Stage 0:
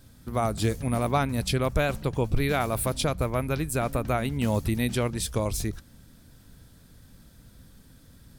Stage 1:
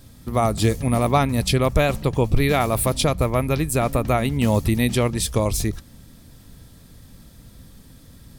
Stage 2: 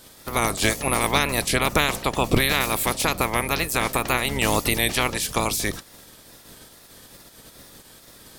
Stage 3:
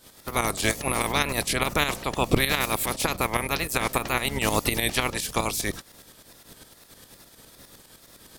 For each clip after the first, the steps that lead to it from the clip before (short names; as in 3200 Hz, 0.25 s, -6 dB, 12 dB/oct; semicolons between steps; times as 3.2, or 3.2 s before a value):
notch 1500 Hz, Q 7.7; gain +6.5 dB
spectral limiter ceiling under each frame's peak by 23 dB; wow and flutter 85 cents; gain -2.5 dB
tremolo saw up 9.8 Hz, depth 65%